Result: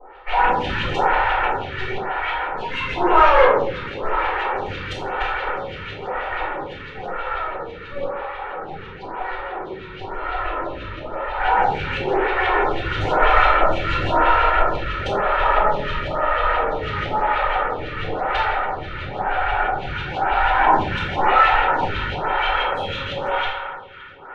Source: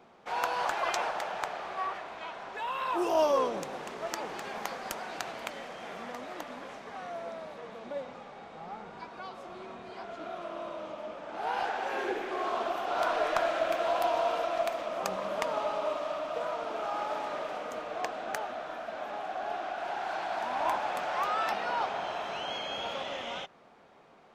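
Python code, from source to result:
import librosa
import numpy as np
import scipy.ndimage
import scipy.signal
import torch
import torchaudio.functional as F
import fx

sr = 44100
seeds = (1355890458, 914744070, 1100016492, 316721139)

p1 = fx.lower_of_two(x, sr, delay_ms=2.2)
p2 = fx.filter_lfo_lowpass(p1, sr, shape='saw_up', hz=6.1, low_hz=740.0, high_hz=3800.0, q=3.2)
p3 = 10.0 ** (-26.5 / 20.0) * np.tanh(p2 / 10.0 ** (-26.5 / 20.0))
p4 = p2 + (p3 * librosa.db_to_amplitude(-4.5))
p5 = scipy.signal.sosfilt(scipy.signal.butter(2, 8100.0, 'lowpass', fs=sr, output='sos'), p4)
p6 = fx.peak_eq(p5, sr, hz=5000.0, db=-4.0, octaves=0.23)
p7 = fx.echo_banded(p6, sr, ms=283, feedback_pct=82, hz=1400.0, wet_db=-10.5)
p8 = fx.room_shoebox(p7, sr, seeds[0], volume_m3=150.0, walls='mixed', distance_m=5.5)
p9 = fx.stagger_phaser(p8, sr, hz=0.99)
y = p9 * librosa.db_to_amplitude(-5.0)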